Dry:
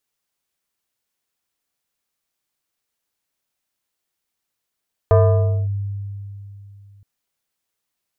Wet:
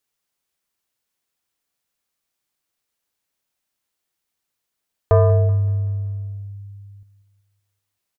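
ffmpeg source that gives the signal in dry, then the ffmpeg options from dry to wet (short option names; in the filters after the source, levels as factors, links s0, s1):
-f lavfi -i "aevalsrc='0.398*pow(10,-3*t/3.07)*sin(2*PI*100*t+1.1*clip(1-t/0.57,0,1)*sin(2*PI*5.54*100*t))':d=1.92:s=44100"
-af "aecho=1:1:190|380|570|760|950:0.141|0.0735|0.0382|0.0199|0.0103"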